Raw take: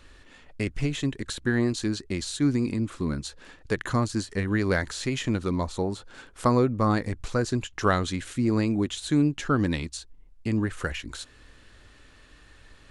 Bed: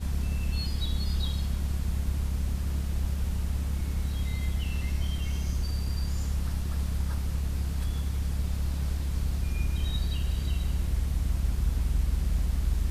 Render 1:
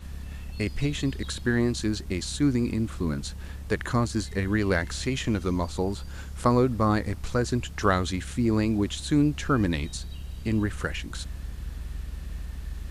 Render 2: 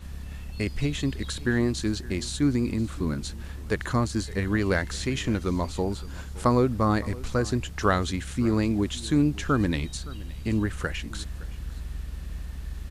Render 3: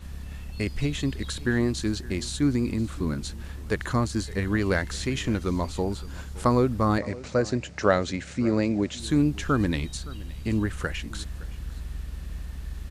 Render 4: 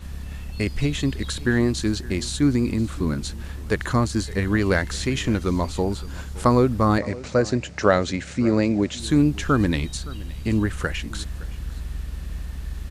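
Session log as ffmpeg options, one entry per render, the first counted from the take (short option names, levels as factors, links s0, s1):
-filter_complex "[1:a]volume=0.355[s0];[0:a][s0]amix=inputs=2:normalize=0"
-af "aecho=1:1:566:0.1"
-filter_complex "[0:a]asettb=1/sr,asplit=3[s0][s1][s2];[s0]atrim=end=6.984[s3];[s1]atrim=start=6.98:end=9,asetpts=PTS-STARTPTS,afade=t=in:d=0.004:c=qsin,afade=t=out:st=2.016:d=0.004:c=qsin,highpass=110,equalizer=f=570:t=q:w=4:g=9,equalizer=f=1100:t=q:w=4:g=-4,equalizer=f=2200:t=q:w=4:g=3,equalizer=f=3300:t=q:w=4:g=-5,lowpass=f=7400:w=0.5412,lowpass=f=7400:w=1.3066[s4];[s2]atrim=start=8.996[s5];[s3][s4]acrossfade=d=0.004:c1=hsin:c2=qsin[s6];[s6][s5]acrossfade=d=0.004:c1=qsin:c2=hsin"
-af "volume=1.58,alimiter=limit=0.708:level=0:latency=1"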